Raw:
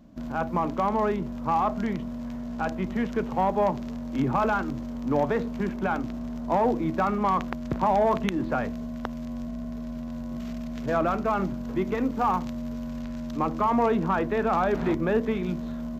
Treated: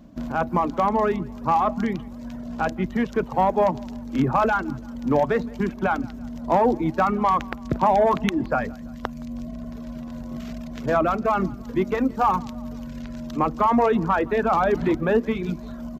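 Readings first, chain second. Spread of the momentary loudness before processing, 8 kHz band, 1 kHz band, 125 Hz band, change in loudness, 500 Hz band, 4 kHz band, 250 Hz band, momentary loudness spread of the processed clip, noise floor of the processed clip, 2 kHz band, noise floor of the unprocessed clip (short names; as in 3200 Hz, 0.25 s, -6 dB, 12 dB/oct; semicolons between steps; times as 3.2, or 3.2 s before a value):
11 LU, n/a, +4.0 dB, +2.5 dB, +4.5 dB, +4.0 dB, +3.5 dB, +2.0 dB, 14 LU, -37 dBFS, +4.5 dB, -35 dBFS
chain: reverb removal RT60 1.2 s; feedback echo 0.168 s, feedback 52%, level -24 dB; gain +5 dB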